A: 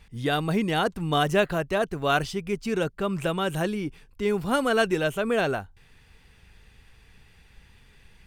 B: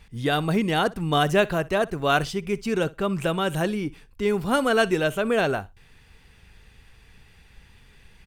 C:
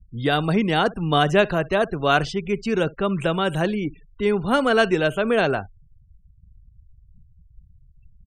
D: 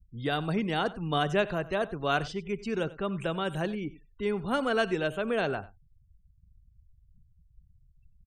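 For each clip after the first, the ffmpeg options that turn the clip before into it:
-af "aecho=1:1:61|122:0.0841|0.0135,volume=2dB"
-filter_complex "[0:a]afftfilt=real='re*gte(hypot(re,im),0.00891)':imag='im*gte(hypot(re,im),0.00891)':win_size=1024:overlap=0.75,acrossover=split=220|6900[a][b][c];[c]acompressor=threshold=-56dB:ratio=6[d];[a][b][d]amix=inputs=3:normalize=0,volume=2.5dB"
-af "aecho=1:1:93:0.119,volume=-9dB"

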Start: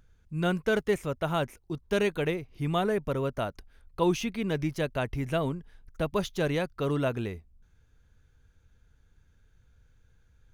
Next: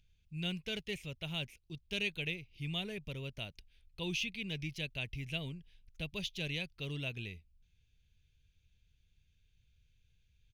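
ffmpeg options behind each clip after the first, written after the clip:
-af "firequalizer=gain_entry='entry(170,0);entry(240,-7);entry(1300,-16);entry(2500,12);entry(7800,-1)':delay=0.05:min_phase=1,volume=-9dB"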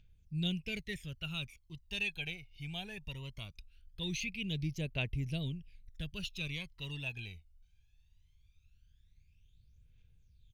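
-af "aphaser=in_gain=1:out_gain=1:delay=1.4:decay=0.7:speed=0.2:type=triangular,volume=-3.5dB"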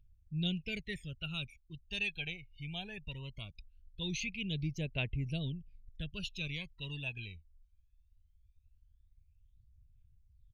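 -af "afftdn=nr=17:nf=-56"

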